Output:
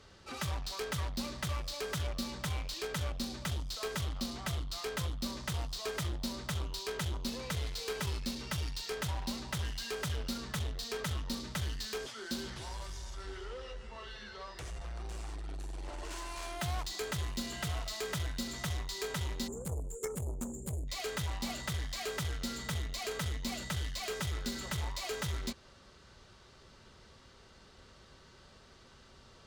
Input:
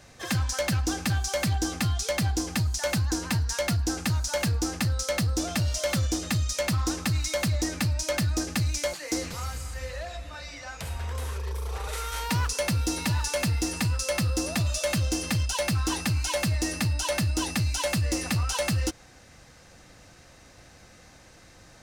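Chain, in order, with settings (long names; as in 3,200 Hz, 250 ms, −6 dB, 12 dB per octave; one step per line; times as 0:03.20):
wrong playback speed 45 rpm record played at 33 rpm
time-frequency box erased 0:19.48–0:20.88, 570–6,700 Hz
harmonic generator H 3 −8 dB, 5 −13 dB, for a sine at −19.5 dBFS
level −5 dB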